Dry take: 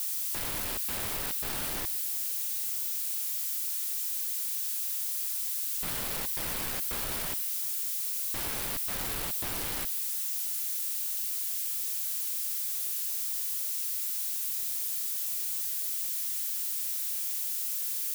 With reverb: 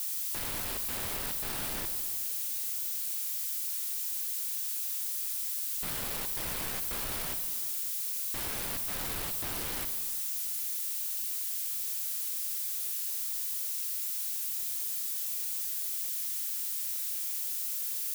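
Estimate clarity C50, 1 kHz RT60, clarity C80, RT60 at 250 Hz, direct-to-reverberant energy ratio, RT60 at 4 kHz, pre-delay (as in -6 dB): 10.0 dB, 1.5 s, 11.5 dB, 1.9 s, 9.0 dB, 1.1 s, 28 ms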